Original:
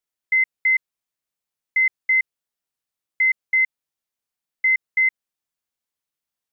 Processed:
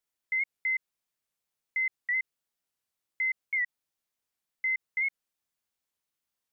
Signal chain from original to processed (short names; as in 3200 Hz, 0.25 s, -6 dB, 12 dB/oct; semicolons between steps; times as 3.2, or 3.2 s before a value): limiter -24.5 dBFS, peak gain reduction 11 dB; record warp 78 rpm, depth 100 cents